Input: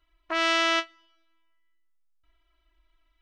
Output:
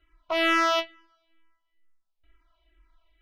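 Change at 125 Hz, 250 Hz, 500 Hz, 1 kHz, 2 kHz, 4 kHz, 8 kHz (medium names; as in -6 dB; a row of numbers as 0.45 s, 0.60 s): no reading, +3.0 dB, +3.5 dB, +2.5 dB, 0.0 dB, -2.0 dB, -3.0 dB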